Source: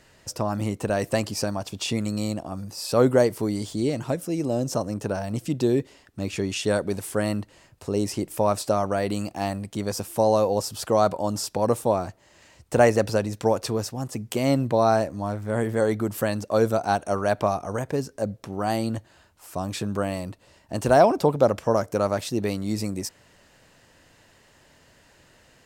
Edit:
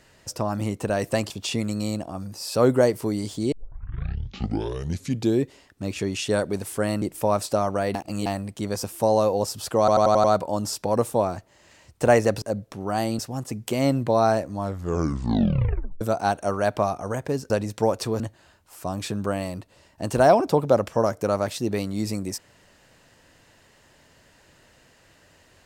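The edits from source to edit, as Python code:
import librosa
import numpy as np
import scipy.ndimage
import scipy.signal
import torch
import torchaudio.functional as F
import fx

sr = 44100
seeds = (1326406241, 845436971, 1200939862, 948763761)

y = fx.edit(x, sr, fx.cut(start_s=1.3, length_s=0.37),
    fx.tape_start(start_s=3.89, length_s=1.89),
    fx.cut(start_s=7.39, length_s=0.79),
    fx.reverse_span(start_s=9.11, length_s=0.31),
    fx.stutter(start_s=10.95, slice_s=0.09, count=6),
    fx.swap(start_s=13.13, length_s=0.7, other_s=18.14, other_length_s=0.77),
    fx.tape_stop(start_s=15.25, length_s=1.4), tone=tone)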